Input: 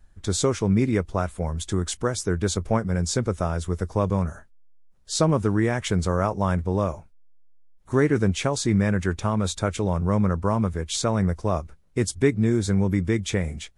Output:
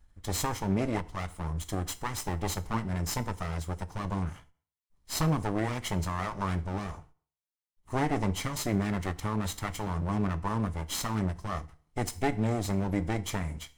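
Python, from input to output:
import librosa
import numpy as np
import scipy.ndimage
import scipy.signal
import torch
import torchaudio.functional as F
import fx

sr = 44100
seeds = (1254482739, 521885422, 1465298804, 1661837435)

y = fx.lower_of_two(x, sr, delay_ms=0.97)
y = fx.rev_fdn(y, sr, rt60_s=0.46, lf_ratio=0.9, hf_ratio=0.9, size_ms=20.0, drr_db=11.0)
y = fx.end_taper(y, sr, db_per_s=270.0)
y = y * 10.0 ** (-4.5 / 20.0)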